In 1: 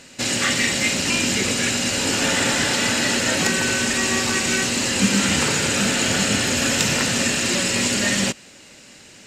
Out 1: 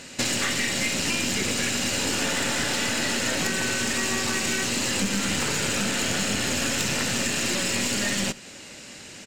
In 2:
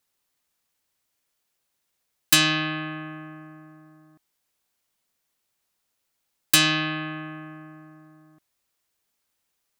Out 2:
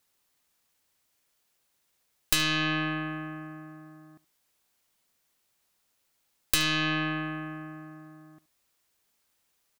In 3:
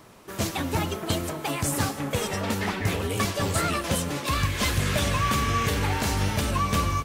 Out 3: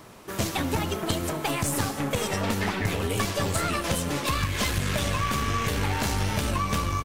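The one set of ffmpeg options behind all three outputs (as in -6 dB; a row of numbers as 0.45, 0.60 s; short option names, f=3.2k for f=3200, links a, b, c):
-filter_complex "[0:a]aeval=exprs='(tanh(5.62*val(0)+0.55)-tanh(0.55))/5.62':c=same,acompressor=threshold=-28dB:ratio=5,asplit=2[a][b];[b]aecho=0:1:73:0.1[c];[a][c]amix=inputs=2:normalize=0,volume=5.5dB"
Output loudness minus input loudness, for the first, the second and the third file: -5.0, -6.5, -1.0 LU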